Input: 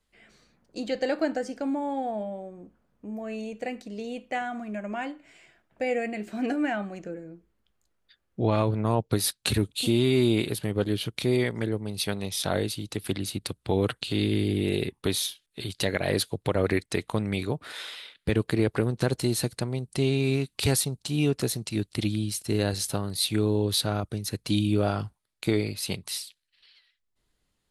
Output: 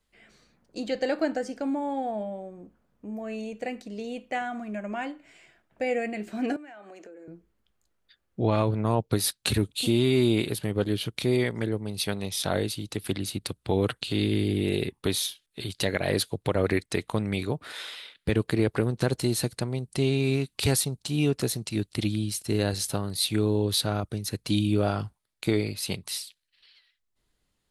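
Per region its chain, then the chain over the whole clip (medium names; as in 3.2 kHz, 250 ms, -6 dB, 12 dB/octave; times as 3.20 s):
6.56–7.28 s: high-pass 300 Hz 24 dB/octave + compression 12:1, threshold -42 dBFS
whole clip: none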